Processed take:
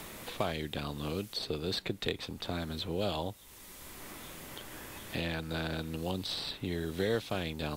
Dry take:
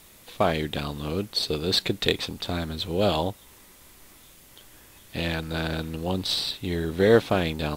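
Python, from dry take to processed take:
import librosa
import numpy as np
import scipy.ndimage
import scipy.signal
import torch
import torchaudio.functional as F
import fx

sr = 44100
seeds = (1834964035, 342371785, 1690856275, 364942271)

y = fx.band_squash(x, sr, depth_pct=70)
y = y * 10.0 ** (-8.5 / 20.0)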